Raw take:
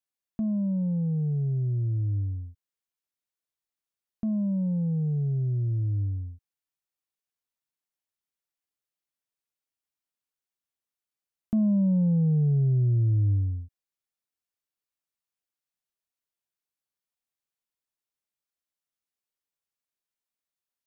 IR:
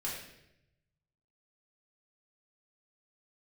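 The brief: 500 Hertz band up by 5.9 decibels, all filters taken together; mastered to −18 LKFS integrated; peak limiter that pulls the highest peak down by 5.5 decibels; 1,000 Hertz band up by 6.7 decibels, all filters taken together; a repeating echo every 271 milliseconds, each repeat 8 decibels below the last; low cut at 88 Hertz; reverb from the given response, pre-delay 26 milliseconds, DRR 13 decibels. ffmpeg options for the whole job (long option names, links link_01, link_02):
-filter_complex "[0:a]highpass=88,equalizer=frequency=500:width_type=o:gain=5.5,equalizer=frequency=1000:width_type=o:gain=6.5,alimiter=limit=-22dB:level=0:latency=1,aecho=1:1:271|542|813|1084|1355:0.398|0.159|0.0637|0.0255|0.0102,asplit=2[link_01][link_02];[1:a]atrim=start_sample=2205,adelay=26[link_03];[link_02][link_03]afir=irnorm=-1:irlink=0,volume=-15.5dB[link_04];[link_01][link_04]amix=inputs=2:normalize=0,volume=10dB"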